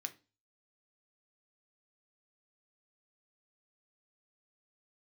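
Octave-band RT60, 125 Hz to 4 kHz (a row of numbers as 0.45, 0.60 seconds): 0.50, 0.40, 0.30, 0.30, 0.30, 0.30 seconds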